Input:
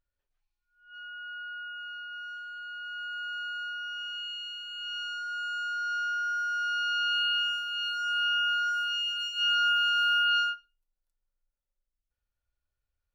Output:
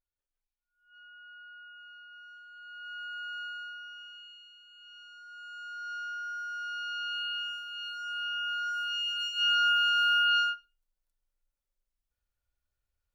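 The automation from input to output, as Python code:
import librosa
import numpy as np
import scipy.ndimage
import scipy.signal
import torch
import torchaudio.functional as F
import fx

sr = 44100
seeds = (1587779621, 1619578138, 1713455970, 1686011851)

y = fx.gain(x, sr, db=fx.line((2.48, -10.0), (2.91, -3.0), (3.43, -3.0), (4.5, -15.5), (5.1, -15.5), (5.9, -7.0), (8.33, -7.0), (9.23, 0.0)))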